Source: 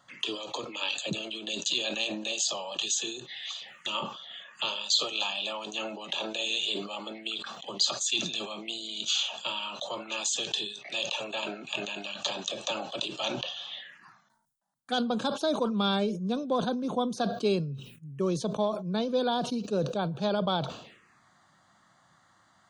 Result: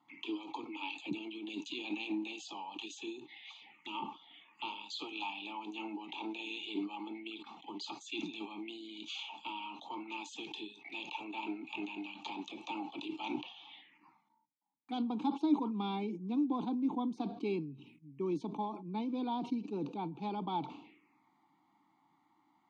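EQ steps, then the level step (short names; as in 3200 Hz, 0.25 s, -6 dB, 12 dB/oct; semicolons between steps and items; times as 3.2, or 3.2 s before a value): vowel filter u; +6.5 dB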